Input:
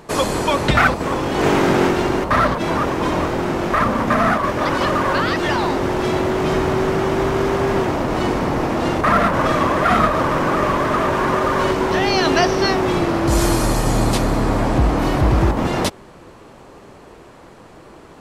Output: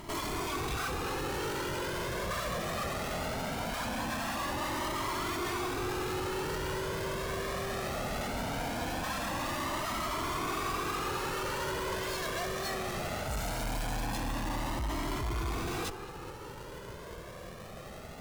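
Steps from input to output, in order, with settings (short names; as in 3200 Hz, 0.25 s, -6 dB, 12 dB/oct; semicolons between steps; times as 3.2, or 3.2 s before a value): half-waves squared off; tube stage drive 30 dB, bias 0.6; narrowing echo 0.207 s, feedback 84%, band-pass 990 Hz, level -10.5 dB; cascading flanger rising 0.2 Hz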